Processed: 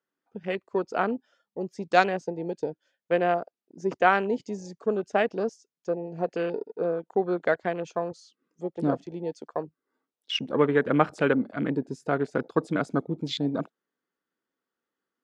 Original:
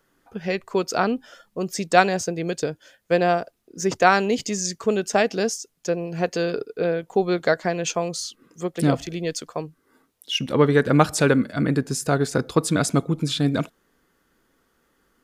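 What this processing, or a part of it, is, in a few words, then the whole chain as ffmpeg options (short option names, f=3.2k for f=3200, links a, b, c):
over-cleaned archive recording: -filter_complex "[0:a]asettb=1/sr,asplit=3[a][b][c];[a]atrim=end=9.404[d];[b]atrim=start=9.4:end=10.44,asetpts=PTS-STARTPTS,afade=t=in:d=0.004:c=qsin,afade=t=out:st=1.036:d=0.004:c=qsin,equalizer=f=660:t=o:w=2.1:g=3.5[e];[c]atrim=start=10.436[f];[d][e]acrossfade=d=0.004:c1=hsin:c2=qsin[g];[g][f]acrossfade=d=0.004:c1=qsin:c2=hsin,highpass=200,lowpass=6k,afwtdn=0.0282,volume=-4dB"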